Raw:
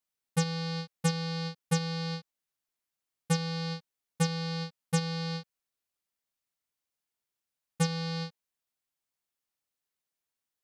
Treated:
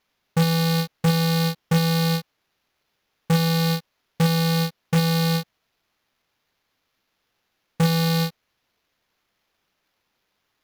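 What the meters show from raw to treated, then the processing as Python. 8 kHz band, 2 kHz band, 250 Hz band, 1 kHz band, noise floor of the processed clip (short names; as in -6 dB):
+5.5 dB, +10.0 dB, +11.5 dB, +10.5 dB, -75 dBFS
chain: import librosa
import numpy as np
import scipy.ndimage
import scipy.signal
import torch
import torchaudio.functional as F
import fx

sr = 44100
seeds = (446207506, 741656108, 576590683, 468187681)

y = fx.sample_hold(x, sr, seeds[0], rate_hz=8500.0, jitter_pct=0)
y = fx.fold_sine(y, sr, drive_db=10, ceiling_db=-15.0)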